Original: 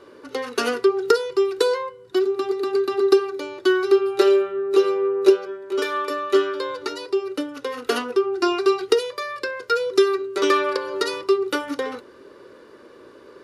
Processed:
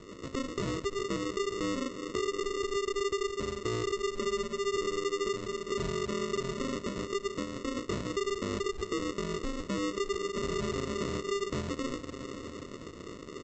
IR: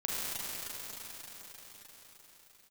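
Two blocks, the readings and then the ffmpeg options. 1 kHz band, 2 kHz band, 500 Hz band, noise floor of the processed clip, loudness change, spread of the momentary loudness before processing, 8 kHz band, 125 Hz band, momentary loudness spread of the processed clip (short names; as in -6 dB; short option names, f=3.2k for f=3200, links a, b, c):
-11.5 dB, -11.0 dB, -13.5 dB, -46 dBFS, -12.0 dB, 11 LU, -2.5 dB, n/a, 5 LU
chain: -filter_complex "[0:a]asplit=2[a][b];[b]highpass=f=720:p=1,volume=16dB,asoftclip=type=tanh:threshold=-3dB[c];[a][c]amix=inputs=2:normalize=0,lowpass=f=2.5k:p=1,volume=-6dB,asplit=2[d][e];[1:a]atrim=start_sample=2205[f];[e][f]afir=irnorm=-1:irlink=0,volume=-19.5dB[g];[d][g]amix=inputs=2:normalize=0,tremolo=f=7.7:d=0.32,alimiter=limit=-14dB:level=0:latency=1:release=12,aresample=16000,acrusher=samples=20:mix=1:aa=0.000001,aresample=44100,acompressor=threshold=-31dB:ratio=2,volume=-5dB"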